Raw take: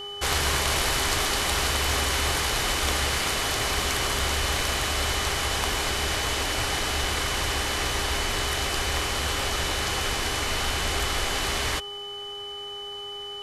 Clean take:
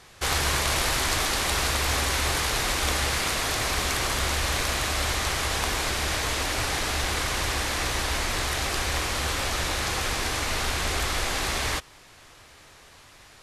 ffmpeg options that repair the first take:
-af "bandreject=f=406.5:t=h:w=4,bandreject=f=813:t=h:w=4,bandreject=f=1.2195k:t=h:w=4,bandreject=f=3k:w=30"

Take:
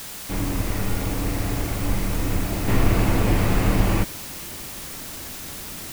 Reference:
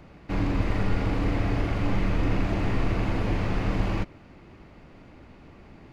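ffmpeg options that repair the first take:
-filter_complex "[0:a]asplit=3[a][b][c];[a]afade=t=out:st=1.87:d=0.02[d];[b]highpass=f=140:w=0.5412,highpass=f=140:w=1.3066,afade=t=in:st=1.87:d=0.02,afade=t=out:st=1.99:d=0.02[e];[c]afade=t=in:st=1.99:d=0.02[f];[d][e][f]amix=inputs=3:normalize=0,asplit=3[g][h][i];[g]afade=t=out:st=2.32:d=0.02[j];[h]highpass=f=140:w=0.5412,highpass=f=140:w=1.3066,afade=t=in:st=2.32:d=0.02,afade=t=out:st=2.44:d=0.02[k];[i]afade=t=in:st=2.44:d=0.02[l];[j][k][l]amix=inputs=3:normalize=0,asplit=3[m][n][o];[m]afade=t=out:st=2.82:d=0.02[p];[n]highpass=f=140:w=0.5412,highpass=f=140:w=1.3066,afade=t=in:st=2.82:d=0.02,afade=t=out:st=2.94:d=0.02[q];[o]afade=t=in:st=2.94:d=0.02[r];[p][q][r]amix=inputs=3:normalize=0,afwtdn=0.016,asetnsamples=n=441:p=0,asendcmd='2.68 volume volume -6.5dB',volume=0dB"

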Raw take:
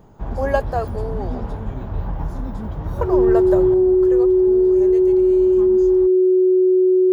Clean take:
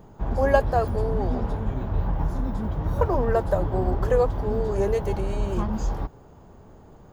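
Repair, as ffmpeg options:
-af "bandreject=f=370:w=30,asetnsamples=n=441:p=0,asendcmd='3.74 volume volume 9dB',volume=0dB"

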